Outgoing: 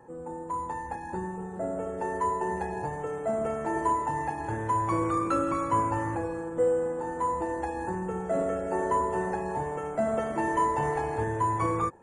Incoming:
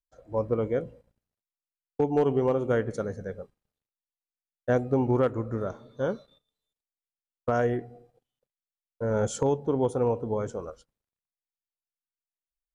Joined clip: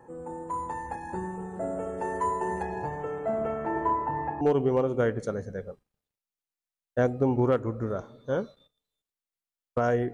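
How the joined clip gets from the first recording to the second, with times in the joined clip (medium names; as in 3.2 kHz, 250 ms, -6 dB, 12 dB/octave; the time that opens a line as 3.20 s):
outgoing
2.62–4.41 s: low-pass 6.3 kHz -> 1.4 kHz
4.41 s: go over to incoming from 2.12 s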